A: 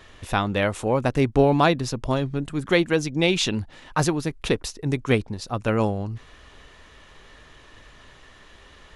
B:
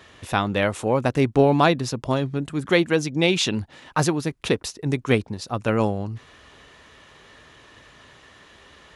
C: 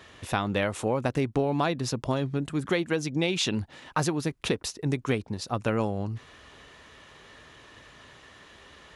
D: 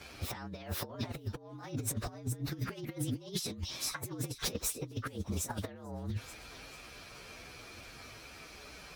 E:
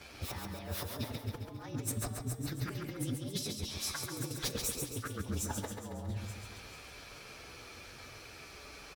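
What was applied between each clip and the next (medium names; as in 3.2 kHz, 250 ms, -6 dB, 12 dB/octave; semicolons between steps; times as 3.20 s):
high-pass 84 Hz 12 dB/octave; trim +1 dB
compression 5:1, threshold -21 dBFS, peak gain reduction 9 dB; trim -1.5 dB
frequency axis rescaled in octaves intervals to 115%; feedback echo behind a high-pass 439 ms, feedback 37%, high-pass 4.3 kHz, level -7 dB; compressor with a negative ratio -36 dBFS, ratio -0.5; trim -1.5 dB
feedback comb 290 Hz, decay 0.72 s, mix 60%; feedback delay 137 ms, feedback 53%, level -5 dB; trim +6 dB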